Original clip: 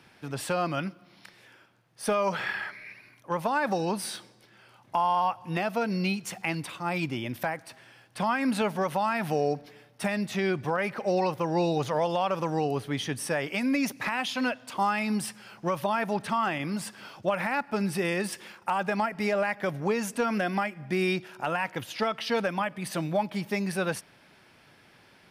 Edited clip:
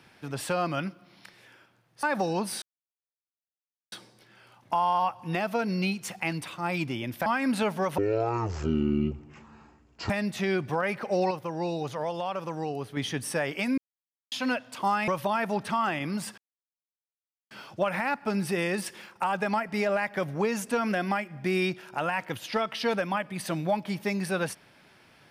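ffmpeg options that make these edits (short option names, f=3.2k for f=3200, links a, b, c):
-filter_complex "[0:a]asplit=12[a][b][c][d][e][f][g][h][i][j][k][l];[a]atrim=end=2.032[m];[b]atrim=start=3.548:end=4.14,asetpts=PTS-STARTPTS,afade=t=out:st=0.588:d=0.004:c=hsin,apad=pad_dur=1.3[n];[c]atrim=start=4.14:end=7.482,asetpts=PTS-STARTPTS,afade=t=in:d=0.004:c=hsin[o];[d]atrim=start=8.248:end=8.974[p];[e]atrim=start=8.97:end=10.05,asetpts=PTS-STARTPTS,asetrate=22491,aresample=44100,atrim=end_sample=93388,asetpts=PTS-STARTPTS[q];[f]atrim=start=10.046:end=11.262[r];[g]atrim=start=11.258:end=12.922,asetpts=PTS-STARTPTS,volume=-5dB[s];[h]atrim=start=12.918:end=13.73,asetpts=PTS-STARTPTS,afade=t=out:st=0.808:d=0.004:c=hsin[t];[i]atrim=start=13.73:end=14.27,asetpts=PTS-STARTPTS,volume=0[u];[j]atrim=start=14.27:end=15.032,asetpts=PTS-STARTPTS,afade=t=in:d=0.004:c=hsin[v];[k]atrim=start=15.668:end=16.97,asetpts=PTS-STARTPTS,afade=t=out:st=1.298:d=0.004:c=hsin,apad=pad_dur=1.13[w];[l]atrim=start=16.97,asetpts=PTS-STARTPTS,afade=t=in:d=0.004:c=hsin[x];[n][o]concat=n=2:v=0:a=1[y];[m][y]acrossfade=d=0.004:c1=hsin:c2=hsin[z];[z][p]acrossfade=d=0.004:c1=hsin:c2=hsin[aa];[aa][q]acrossfade=d=0.004:c1=hsin:c2=hsin[ab];[ab][r]acrossfade=d=0.004:c1=hsin:c2=hsin[ac];[ac][s]acrossfade=d=0.004:c1=hsin:c2=hsin[ad];[t][u][v]concat=n=3:v=0:a=1[ae];[ad][ae]acrossfade=d=0.004:c1=hsin:c2=hsin[af];[w][x]concat=n=2:v=0:a=1[ag];[af][ag]acrossfade=d=0.004:c1=hsin:c2=hsin"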